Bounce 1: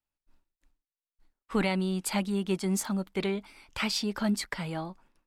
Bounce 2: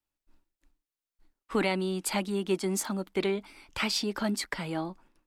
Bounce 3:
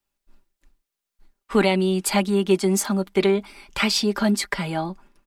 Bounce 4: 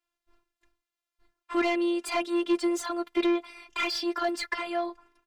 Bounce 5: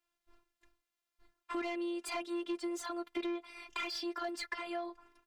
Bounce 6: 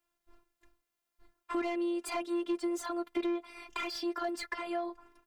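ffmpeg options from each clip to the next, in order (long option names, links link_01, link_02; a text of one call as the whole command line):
ffmpeg -i in.wav -filter_complex "[0:a]equalizer=frequency=320:width_type=o:width=0.51:gain=5.5,acrossover=split=230[link_01][link_02];[link_01]acompressor=threshold=-41dB:ratio=6[link_03];[link_03][link_02]amix=inputs=2:normalize=0,volume=1dB" out.wav
ffmpeg -i in.wav -af "aecho=1:1:5:0.53,volume=6.5dB" out.wav
ffmpeg -i in.wav -filter_complex "[0:a]afftfilt=real='hypot(re,im)*cos(PI*b)':imag='0':win_size=512:overlap=0.75,asplit=2[link_01][link_02];[link_02]highpass=frequency=720:poles=1,volume=19dB,asoftclip=type=tanh:threshold=-6.5dB[link_03];[link_01][link_03]amix=inputs=2:normalize=0,lowpass=frequency=2300:poles=1,volume=-6dB,volume=-8dB" out.wav
ffmpeg -i in.wav -af "acompressor=threshold=-39dB:ratio=3" out.wav
ffmpeg -i in.wav -af "equalizer=frequency=3600:width_type=o:width=2.6:gain=-5.5,volume=5dB" out.wav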